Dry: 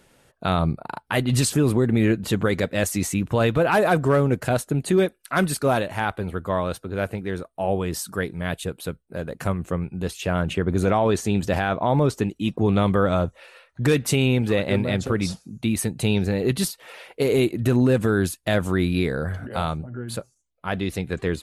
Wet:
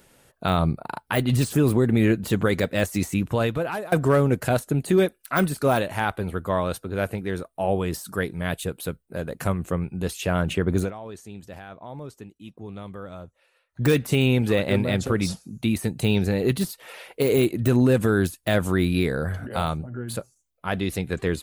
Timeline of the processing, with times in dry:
3.19–3.92 fade out, to -21.5 dB
10.79–13.81 dip -18 dB, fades 0.12 s
whole clip: de-esser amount 65%; high shelf 11000 Hz +10.5 dB

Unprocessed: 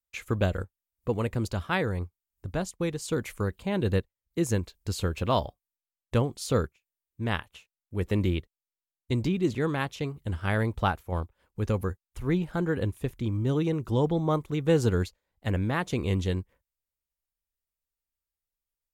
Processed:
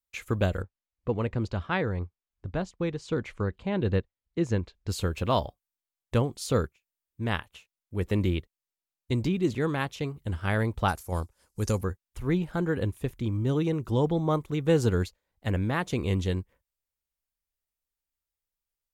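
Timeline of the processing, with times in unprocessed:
0.62–4.89 air absorption 140 m
10.88–11.81 band shelf 7500 Hz +15.5 dB

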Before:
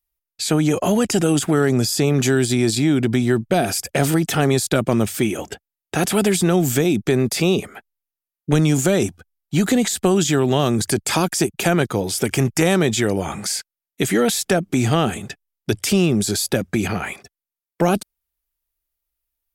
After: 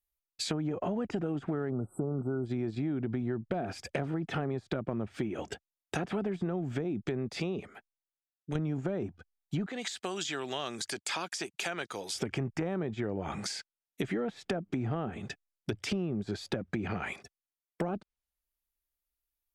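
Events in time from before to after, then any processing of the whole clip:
1.7–2.45 spectral delete 1500–7700 Hz
6.31–8.55 fade out linear, to -10 dB
9.66–12.15 HPF 1400 Hz 6 dB/oct
whole clip: treble ducked by the level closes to 1400 Hz, closed at -15 dBFS; compressor, threshold -22 dBFS; gain -7.5 dB

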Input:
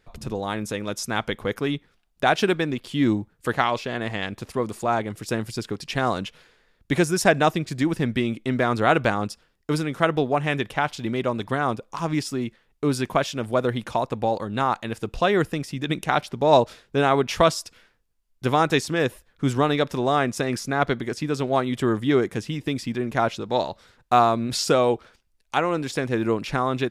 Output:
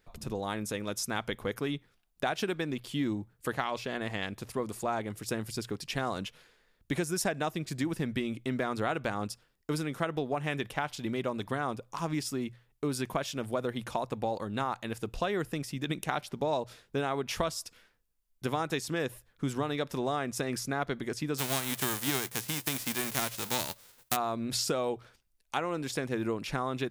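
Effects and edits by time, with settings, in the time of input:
21.37–24.15 spectral whitening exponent 0.3
whole clip: high shelf 10000 Hz +10.5 dB; compressor 6:1, threshold -21 dBFS; notches 60/120 Hz; gain -6 dB

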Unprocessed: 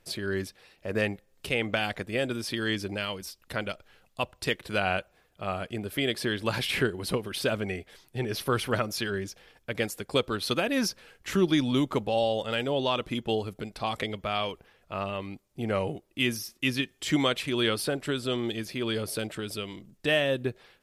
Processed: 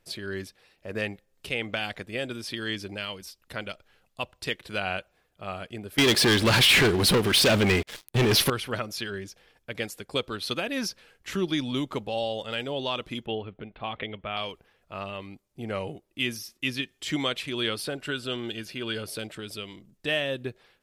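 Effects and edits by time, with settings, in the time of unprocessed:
5.98–8.5 sample leveller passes 5
13.26–14.37 steep low-pass 3400 Hz 48 dB/oct
17.98–19.07 small resonant body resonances 1500/2800 Hz, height 13 dB
whole clip: dynamic EQ 3400 Hz, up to +4 dB, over -43 dBFS, Q 0.72; gain -4 dB

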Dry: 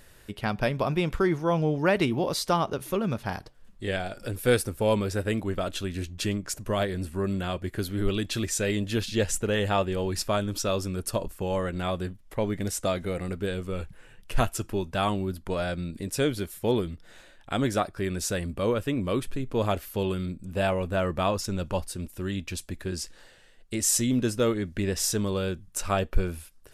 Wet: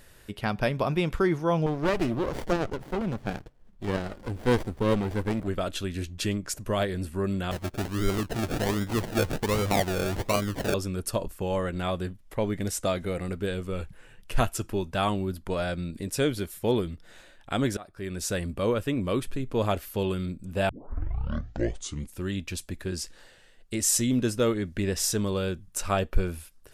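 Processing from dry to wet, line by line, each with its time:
1.66–5.48 running maximum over 33 samples
7.51–10.74 decimation with a swept rate 35×, swing 60% 1.3 Hz
17.77–18.34 fade in, from -23 dB
20.69 tape start 1.55 s

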